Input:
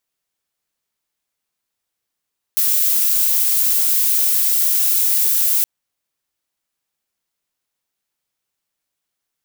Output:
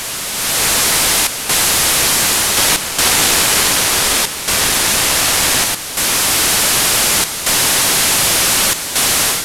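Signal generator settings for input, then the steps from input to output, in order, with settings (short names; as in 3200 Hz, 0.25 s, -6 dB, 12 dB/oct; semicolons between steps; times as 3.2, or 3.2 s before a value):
noise violet, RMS -16 dBFS 3.07 s
delta modulation 64 kbps, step -16 dBFS; AGC gain up to 10.5 dB; chopper 0.67 Hz, depth 65%, duty 85%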